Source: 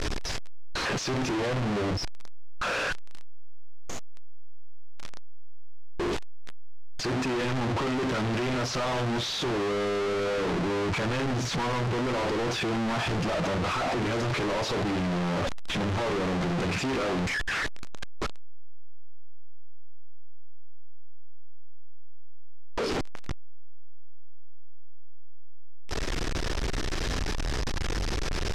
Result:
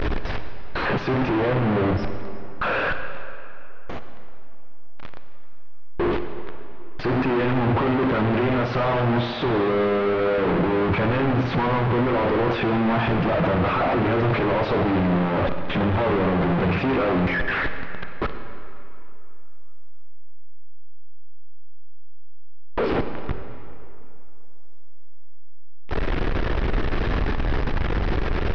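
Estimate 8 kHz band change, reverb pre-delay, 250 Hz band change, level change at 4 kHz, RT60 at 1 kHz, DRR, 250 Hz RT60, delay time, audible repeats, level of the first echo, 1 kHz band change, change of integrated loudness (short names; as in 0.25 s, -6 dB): under -20 dB, 37 ms, +7.5 dB, -2.0 dB, 2.8 s, 7.5 dB, 2.6 s, none, none, none, +7.0 dB, +6.5 dB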